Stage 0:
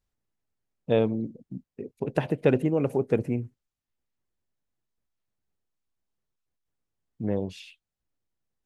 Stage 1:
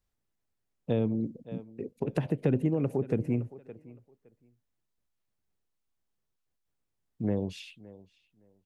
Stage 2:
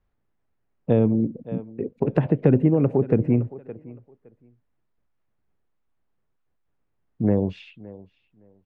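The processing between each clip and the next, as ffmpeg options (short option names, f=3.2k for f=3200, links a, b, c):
-filter_complex "[0:a]asplit=2[a][b];[b]adelay=564,lowpass=f=4.4k:p=1,volume=-22dB,asplit=2[c][d];[d]adelay=564,lowpass=f=4.4k:p=1,volume=0.18[e];[a][c][e]amix=inputs=3:normalize=0,acrossover=split=300[f][g];[g]acompressor=threshold=-31dB:ratio=10[h];[f][h]amix=inputs=2:normalize=0"
-af "lowpass=1.9k,volume=9dB"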